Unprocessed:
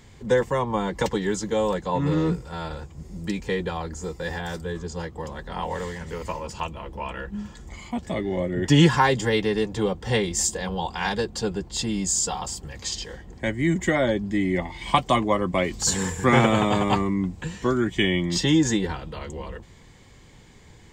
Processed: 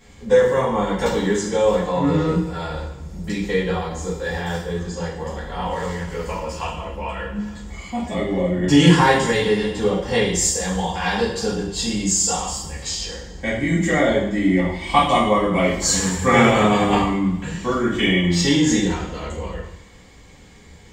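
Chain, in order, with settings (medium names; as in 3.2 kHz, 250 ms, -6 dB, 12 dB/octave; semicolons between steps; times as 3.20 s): 8.73–9.56 s: peaking EQ 9.2 kHz +6.5 dB 0.39 oct; two-slope reverb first 0.66 s, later 1.9 s, DRR -9.5 dB; trim -5 dB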